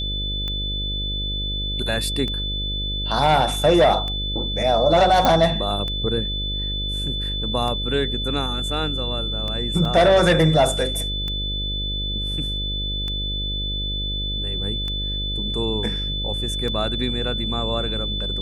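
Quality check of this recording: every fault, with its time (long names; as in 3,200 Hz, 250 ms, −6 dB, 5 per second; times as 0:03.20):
mains buzz 50 Hz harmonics 12 −28 dBFS
scratch tick 33 1/3 rpm −16 dBFS
whistle 3,500 Hz −26 dBFS
0:05.25: click −4 dBFS
0:09.85: drop-out 2.2 ms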